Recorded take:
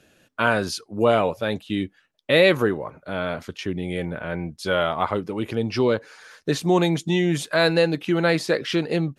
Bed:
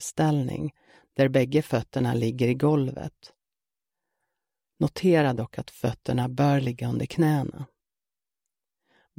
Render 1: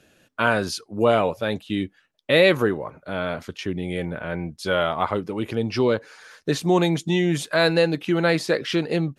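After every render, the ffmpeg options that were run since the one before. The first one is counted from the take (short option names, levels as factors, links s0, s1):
-af anull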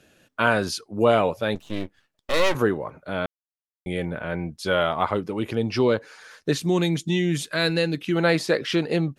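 -filter_complex "[0:a]asettb=1/sr,asplit=3[s0][s1][s2];[s0]atrim=end=1.554[s3];[s1]atrim=start=1.55:end=2.55,asetpts=PTS-STARTPTS,afade=t=in:d=0.004:c=qsin,afade=t=out:st=0.996:d=0.004:c=qsin,aeval=exprs='max(val(0),0)':c=same[s4];[s2]atrim=start=2.546[s5];[s3][s4]acrossfade=d=0.004:c1=hsin:c2=qsin[s6];[s6][s5]acrossfade=d=0.004:c1=qsin:c2=hsin,asettb=1/sr,asplit=3[s7][s8][s9];[s7]atrim=end=6.534[s10];[s8]atrim=start=6.53:end=8.16,asetpts=PTS-STARTPTS,afade=t=in:d=0.004:c=qsin,afade=t=out:st=1.626:d=0.004:c=qsin,equalizer=f=770:w=0.92:g=-9.5[s11];[s9]atrim=start=8.156[s12];[s10][s11]acrossfade=d=0.004:c1=hsin:c2=qsin[s13];[s13][s12]acrossfade=d=0.004:c1=qsin:c2=hsin,asplit=3[s14][s15][s16];[s14]atrim=end=3.26,asetpts=PTS-STARTPTS,afade=t=out:st=3.256:d=0.004:c=hsin[s17];[s15]atrim=start=3.26:end=3.86,asetpts=PTS-STARTPTS,volume=0[s18];[s16]atrim=start=3.86,asetpts=PTS-STARTPTS,afade=t=in:d=0.004:c=hsin[s19];[s17][s18][s19]concat=n=3:v=0:a=1"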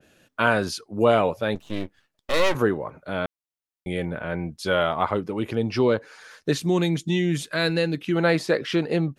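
-af "adynamicequalizer=threshold=0.0112:dfrequency=2400:dqfactor=0.7:tfrequency=2400:tqfactor=0.7:attack=5:release=100:ratio=0.375:range=2:mode=cutabove:tftype=highshelf"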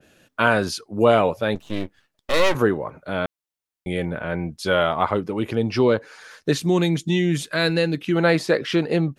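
-af "volume=1.33,alimiter=limit=0.708:level=0:latency=1"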